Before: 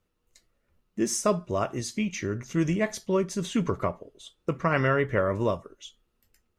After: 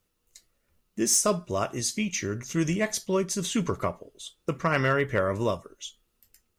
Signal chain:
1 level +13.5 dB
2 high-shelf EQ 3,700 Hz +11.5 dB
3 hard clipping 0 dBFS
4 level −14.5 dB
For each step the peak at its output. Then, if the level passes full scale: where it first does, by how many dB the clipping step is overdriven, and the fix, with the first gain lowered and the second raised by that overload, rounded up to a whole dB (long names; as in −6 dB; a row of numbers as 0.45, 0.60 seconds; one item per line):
+3.0, +6.0, 0.0, −14.5 dBFS
step 1, 6.0 dB
step 1 +7.5 dB, step 4 −8.5 dB